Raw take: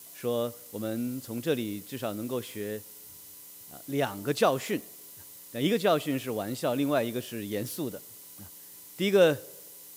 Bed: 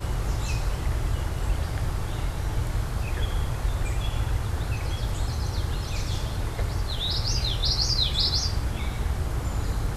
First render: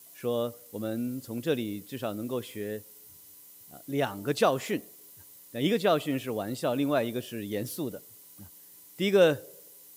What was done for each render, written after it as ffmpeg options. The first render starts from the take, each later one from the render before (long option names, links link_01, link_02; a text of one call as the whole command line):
ffmpeg -i in.wav -af "afftdn=noise_reduction=6:noise_floor=-49" out.wav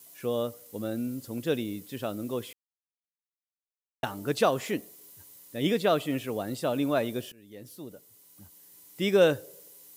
ffmpeg -i in.wav -filter_complex "[0:a]asplit=4[link_01][link_02][link_03][link_04];[link_01]atrim=end=2.53,asetpts=PTS-STARTPTS,afade=type=out:start_time=2.526:duration=0.004:curve=hsin[link_05];[link_02]atrim=start=2.53:end=4.03,asetpts=PTS-STARTPTS,volume=0[link_06];[link_03]atrim=start=4.03:end=7.32,asetpts=PTS-STARTPTS,afade=type=in:duration=0.004:curve=hsin,afade=type=out:start_time=3.286:duration=0.004:curve=hsin:silence=0.0794328[link_07];[link_04]atrim=start=7.32,asetpts=PTS-STARTPTS,afade=type=in:duration=1.74:silence=0.0794328[link_08];[link_05][link_06][link_07][link_08]concat=n=4:v=0:a=1" out.wav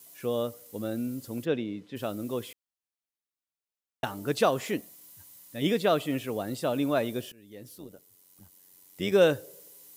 ffmpeg -i in.wav -filter_complex "[0:a]asplit=3[link_01][link_02][link_03];[link_01]afade=type=out:start_time=1.44:duration=0.02[link_04];[link_02]highpass=110,lowpass=3100,afade=type=in:start_time=1.44:duration=0.02,afade=type=out:start_time=1.95:duration=0.02[link_05];[link_03]afade=type=in:start_time=1.95:duration=0.02[link_06];[link_04][link_05][link_06]amix=inputs=3:normalize=0,asettb=1/sr,asplit=3[link_07][link_08][link_09];[link_07]atrim=end=4.814[link_10];[link_08]atrim=start=4.81:end=5.62,asetpts=PTS-STARTPTS,afade=type=in:duration=0.004:curve=qsin,afade=type=out:start_time=0.806:duration=0.004:curve=qsin,equalizer=frequency=410:width=3.4:gain=-13.5[link_11];[link_09]atrim=start=5.616[link_12];[link_10][link_11]acrossfade=duration=0.004:curve1=hsin:curve2=qsin[link_13];[link_13][link_12]acrossfade=duration=0.004:curve1=qsin:curve2=hsin,asettb=1/sr,asplit=3[link_14][link_15][link_16];[link_14]atrim=end=7.784[link_17];[link_15]atrim=start=7.78:end=9.12,asetpts=PTS-STARTPTS,afade=type=in:duration=0.004:curve=qsin,afade=type=out:start_time=1.336:duration=0.004:curve=qsin,tremolo=f=92:d=0.667[link_18];[link_16]atrim=start=9.116[link_19];[link_17][link_18]acrossfade=duration=0.004:curve1=hsin:curve2=qsin[link_20];[link_20][link_19]acrossfade=duration=0.004:curve1=qsin:curve2=hsin" out.wav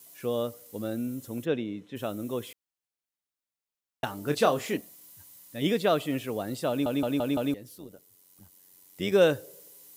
ffmpeg -i in.wav -filter_complex "[0:a]asettb=1/sr,asplit=3[link_01][link_02][link_03];[link_01]atrim=end=0.954[link_04];[link_02]atrim=start=0.95:end=2.47,asetpts=PTS-STARTPTS,afade=type=in:duration=0.004:curve=qsin,afade=type=out:start_time=1.516:duration=0.004:curve=qsin,bandreject=frequency=4700:width=5.3[link_05];[link_03]atrim=start=2.466[link_06];[link_04][link_05]acrossfade=duration=0.004:curve1=hsin:curve2=qsin[link_07];[link_07][link_06]acrossfade=duration=0.004:curve1=qsin:curve2=hsin,asettb=1/sr,asplit=3[link_08][link_09][link_10];[link_08]atrim=end=4.244[link_11];[link_09]atrim=start=4.24:end=4.77,asetpts=PTS-STARTPTS,afade=type=in:duration=0.004:curve=qsin,afade=type=out:start_time=0.526:duration=0.004:curve=qsin,asplit=2[link_12][link_13];[link_13]adelay=27,volume=-8dB[link_14];[link_12][link_14]amix=inputs=2:normalize=0,atrim=end_sample=23373[link_15];[link_10]atrim=start=4.766[link_16];[link_11][link_15]acrossfade=duration=0.004:curve1=hsin:curve2=qsin[link_17];[link_17][link_16]acrossfade=duration=0.004:curve1=qsin:curve2=hsin,asplit=6[link_18][link_19][link_20][link_21][link_22][link_23];[link_18]atrim=end=6.862[link_24];[link_19]atrim=start=6.688:end=6.862[link_25];[link_20]atrim=start=6.688:end=6.862[link_26];[link_21]atrim=start=6.688:end=6.862[link_27];[link_22]atrim=start=6.688:end=6.862[link_28];[link_23]atrim=start=7.538[link_29];[link_24][link_25]acrossfade=duration=0.004:curve1=hsin:curve2=hsin[link_30];[link_30][link_26]acrossfade=duration=0.004:curve1=hsin:curve2=hsin[link_31];[link_31][link_27]acrossfade=duration=0.004:curve1=hsin:curve2=hsin[link_32];[link_32][link_28]acrossfade=duration=0.004:curve1=hsin:curve2=hsin[link_33];[link_33][link_29]acrossfade=duration=0.004:curve1=hsin:curve2=hsin" out.wav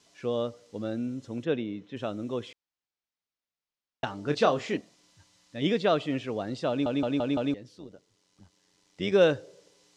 ffmpeg -i in.wav -af "lowpass=frequency=6000:width=0.5412,lowpass=frequency=6000:width=1.3066" out.wav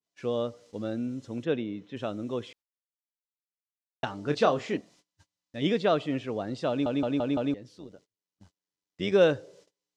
ffmpeg -i in.wav -af "agate=range=-27dB:threshold=-56dB:ratio=16:detection=peak,adynamicequalizer=threshold=0.00708:dfrequency=1800:dqfactor=0.7:tfrequency=1800:tqfactor=0.7:attack=5:release=100:ratio=0.375:range=2:mode=cutabove:tftype=highshelf" out.wav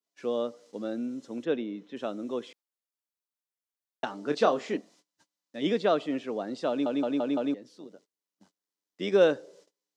ffmpeg -i in.wav -af "highpass=frequency=200:width=0.5412,highpass=frequency=200:width=1.3066,equalizer=frequency=2600:width=1.5:gain=-3" out.wav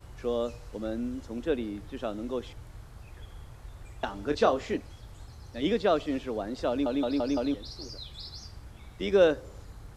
ffmpeg -i in.wav -i bed.wav -filter_complex "[1:a]volume=-19dB[link_01];[0:a][link_01]amix=inputs=2:normalize=0" out.wav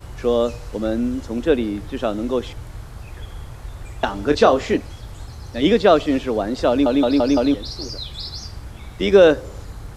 ffmpeg -i in.wav -af "volume=11.5dB,alimiter=limit=-2dB:level=0:latency=1" out.wav